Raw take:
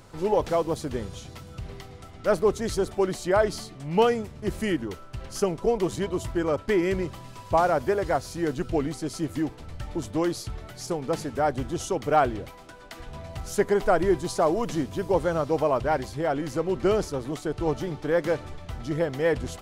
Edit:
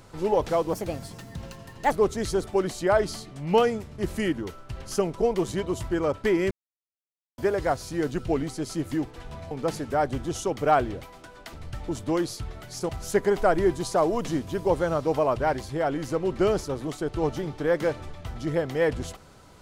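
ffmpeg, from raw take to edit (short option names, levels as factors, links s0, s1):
-filter_complex "[0:a]asplit=9[s0][s1][s2][s3][s4][s5][s6][s7][s8];[s0]atrim=end=0.734[s9];[s1]atrim=start=0.73:end=2.36,asetpts=PTS-STARTPTS,asetrate=60417,aresample=44100,atrim=end_sample=52469,asetpts=PTS-STARTPTS[s10];[s2]atrim=start=2.356:end=6.95,asetpts=PTS-STARTPTS,afade=t=out:st=4.59:d=0.004:c=hsin[s11];[s3]atrim=start=6.95:end=7.82,asetpts=PTS-STARTPTS,volume=0[s12];[s4]atrim=start=7.82:end=9.602,asetpts=PTS-STARTPTS,afade=t=in:d=0.004:c=hsin[s13];[s5]atrim=start=12.978:end=13.332[s14];[s6]atrim=start=10.958:end=12.982[s15];[s7]atrim=start=9.598:end=10.962[s16];[s8]atrim=start=13.328[s17];[s9][s10]acrossfade=d=0.004:c1=hsin:c2=hsin[s18];[s11][s12][s13]concat=n=3:v=0:a=1[s19];[s18][s19]acrossfade=d=0.004:c1=hsin:c2=hsin[s20];[s20][s14]acrossfade=d=0.004:c1=hsin:c2=hsin[s21];[s21][s15]acrossfade=d=0.004:c1=hsin:c2=hsin[s22];[s22][s16]acrossfade=d=0.004:c1=hsin:c2=hsin[s23];[s23][s17]acrossfade=d=0.004:c1=hsin:c2=hsin"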